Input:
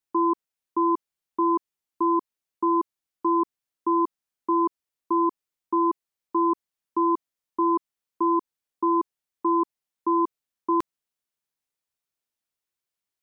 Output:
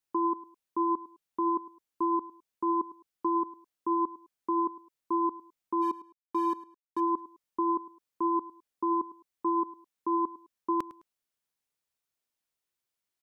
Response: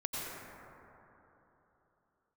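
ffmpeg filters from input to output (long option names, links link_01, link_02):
-filter_complex "[0:a]alimiter=limit=-21.5dB:level=0:latency=1:release=129,asplit=3[link_01][link_02][link_03];[link_01]afade=type=out:start_time=5.81:duration=0.02[link_04];[link_02]aeval=exprs='sgn(val(0))*max(abs(val(0))-0.00335,0)':channel_layout=same,afade=type=in:start_time=5.81:duration=0.02,afade=type=out:start_time=6.99:duration=0.02[link_05];[link_03]afade=type=in:start_time=6.99:duration=0.02[link_06];[link_04][link_05][link_06]amix=inputs=3:normalize=0,aecho=1:1:105|210:0.133|0.036"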